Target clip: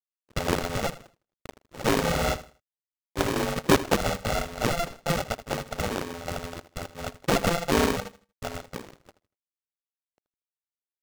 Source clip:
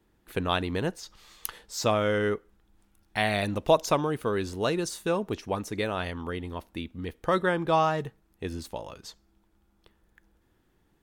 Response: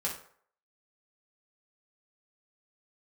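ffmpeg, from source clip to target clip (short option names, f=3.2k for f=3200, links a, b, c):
-af "aeval=exprs='sgn(val(0))*max(abs(val(0))-0.00596,0)':c=same,adynamicsmooth=sensitivity=2:basefreq=6.1k,aresample=16000,acrusher=samples=23:mix=1:aa=0.000001,aresample=44100,aecho=1:1:79|158|237:0.168|0.0453|0.0122,aeval=exprs='val(0)*sgn(sin(2*PI*340*n/s))':c=same,volume=1.5dB"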